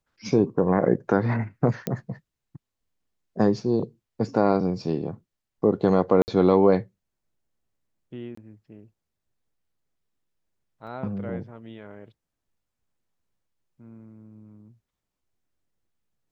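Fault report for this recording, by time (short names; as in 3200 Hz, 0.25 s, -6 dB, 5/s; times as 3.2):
1.87 pop -13 dBFS
6.22–6.28 gap 59 ms
8.35–8.37 gap 24 ms
10.87 gap 4.2 ms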